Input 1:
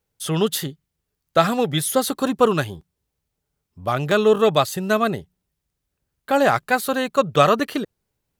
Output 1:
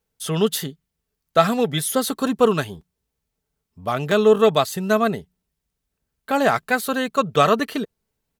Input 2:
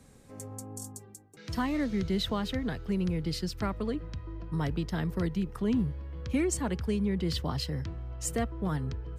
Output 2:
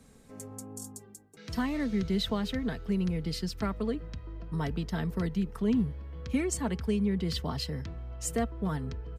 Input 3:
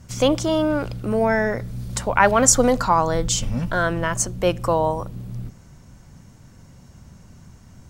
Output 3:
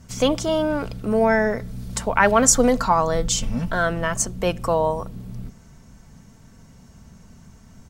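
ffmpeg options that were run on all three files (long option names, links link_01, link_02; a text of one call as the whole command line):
ffmpeg -i in.wav -af "aecho=1:1:4.5:0.35,volume=-1dB" out.wav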